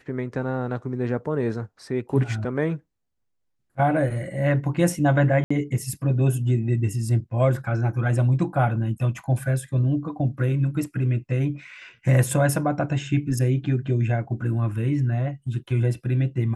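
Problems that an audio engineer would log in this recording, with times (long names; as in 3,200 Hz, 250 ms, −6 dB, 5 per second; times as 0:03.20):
0:05.44–0:05.50: drop-out 65 ms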